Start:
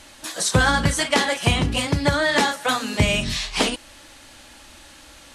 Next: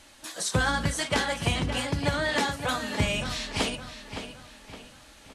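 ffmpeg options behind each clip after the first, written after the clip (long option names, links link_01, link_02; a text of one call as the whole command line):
ffmpeg -i in.wav -filter_complex "[0:a]asplit=2[link_01][link_02];[link_02]adelay=565,lowpass=frequency=4700:poles=1,volume=-9dB,asplit=2[link_03][link_04];[link_04]adelay=565,lowpass=frequency=4700:poles=1,volume=0.44,asplit=2[link_05][link_06];[link_06]adelay=565,lowpass=frequency=4700:poles=1,volume=0.44,asplit=2[link_07][link_08];[link_08]adelay=565,lowpass=frequency=4700:poles=1,volume=0.44,asplit=2[link_09][link_10];[link_10]adelay=565,lowpass=frequency=4700:poles=1,volume=0.44[link_11];[link_01][link_03][link_05][link_07][link_09][link_11]amix=inputs=6:normalize=0,volume=-7.5dB" out.wav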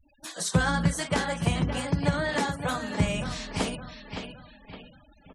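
ffmpeg -i in.wav -af "adynamicequalizer=threshold=0.00631:dfrequency=3300:dqfactor=0.78:tfrequency=3300:tqfactor=0.78:attack=5:release=100:ratio=0.375:range=3:mode=cutabove:tftype=bell,afftfilt=real='re*gte(hypot(re,im),0.00562)':imag='im*gte(hypot(re,im),0.00562)':win_size=1024:overlap=0.75,equalizer=frequency=170:width_type=o:width=0.23:gain=10.5" out.wav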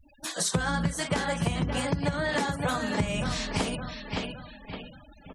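ffmpeg -i in.wav -af "acompressor=threshold=-29dB:ratio=6,volume=5dB" out.wav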